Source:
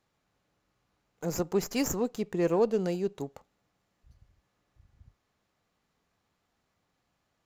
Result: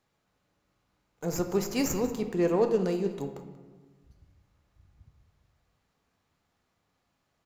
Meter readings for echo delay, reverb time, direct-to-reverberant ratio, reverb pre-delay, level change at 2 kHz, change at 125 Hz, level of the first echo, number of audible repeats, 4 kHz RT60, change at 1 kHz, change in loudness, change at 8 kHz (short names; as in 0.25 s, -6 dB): 0.186 s, 1.3 s, 5.5 dB, 5 ms, +1.0 dB, +1.5 dB, -16.5 dB, 1, 0.75 s, +1.0 dB, +1.0 dB, +0.5 dB